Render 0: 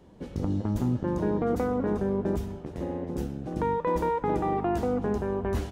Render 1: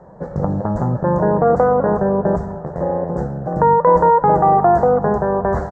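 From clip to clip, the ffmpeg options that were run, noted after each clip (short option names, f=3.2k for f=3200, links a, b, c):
-af "firequalizer=gain_entry='entry(110,0);entry(150,11);entry(260,-5);entry(560,14);entry(1800,6);entry(2600,-29);entry(4200,-12);entry(7500,-6);entry(11000,-28)':delay=0.05:min_phase=1,volume=5dB"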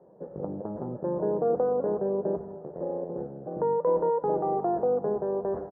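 -af "bandpass=f=380:t=q:w=1.9:csg=0,volume=-7dB"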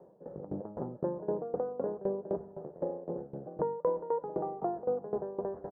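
-af "acompressor=threshold=-31dB:ratio=2,aeval=exprs='val(0)*pow(10,-18*if(lt(mod(3.9*n/s,1),2*abs(3.9)/1000),1-mod(3.9*n/s,1)/(2*abs(3.9)/1000),(mod(3.9*n/s,1)-2*abs(3.9)/1000)/(1-2*abs(3.9)/1000))/20)':c=same,volume=3dB"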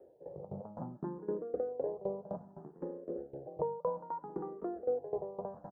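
-filter_complex "[0:a]asplit=2[a][b];[b]afreqshift=0.62[c];[a][c]amix=inputs=2:normalize=1,volume=-1dB"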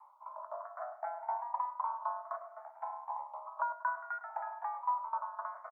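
-filter_complex "[0:a]afreqshift=490,asplit=2[a][b];[b]adelay=105,lowpass=f=1.5k:p=1,volume=-11dB,asplit=2[c][d];[d]adelay=105,lowpass=f=1.5k:p=1,volume=0.35,asplit=2[e][f];[f]adelay=105,lowpass=f=1.5k:p=1,volume=0.35,asplit=2[g][h];[h]adelay=105,lowpass=f=1.5k:p=1,volume=0.35[i];[a][c][e][g][i]amix=inputs=5:normalize=0"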